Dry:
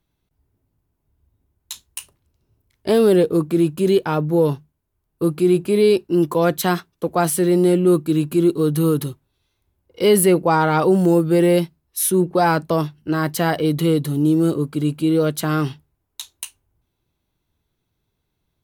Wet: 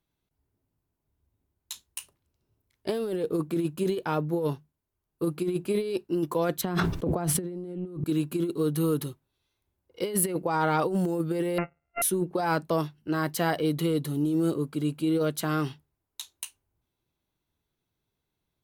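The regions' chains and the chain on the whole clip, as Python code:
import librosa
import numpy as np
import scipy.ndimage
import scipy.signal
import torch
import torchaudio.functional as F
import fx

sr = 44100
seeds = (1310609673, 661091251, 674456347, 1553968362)

y = fx.chain(x, sr, fx.tilt_eq(slope=-3.0),
    fx.sustainer(db_per_s=30.0), at=(6.61, 8.04))
y = fx.chain(y, sr, fx.sample_sort(block=64),
    fx.resample_bad(factor=8, down='none', up='filtered'), at=(11.58, 12.02))
y = fx.low_shelf(y, sr, hz=130.0, db=-6.0)
y = fx.over_compress(y, sr, threshold_db=-17.0, ratio=-0.5)
y = y * librosa.db_to_amplitude(-8.5)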